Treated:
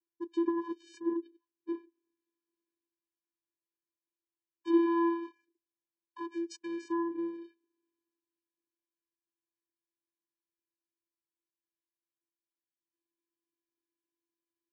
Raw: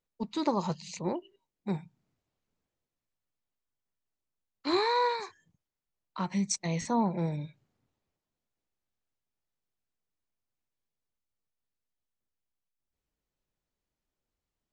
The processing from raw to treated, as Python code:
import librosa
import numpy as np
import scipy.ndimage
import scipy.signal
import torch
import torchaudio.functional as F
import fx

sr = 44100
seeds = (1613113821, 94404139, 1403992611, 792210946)

y = fx.vocoder(x, sr, bands=8, carrier='square', carrier_hz=337.0)
y = fx.env_lowpass_down(y, sr, base_hz=2000.0, full_db=-26.5)
y = F.gain(torch.from_numpy(y), -1.0).numpy()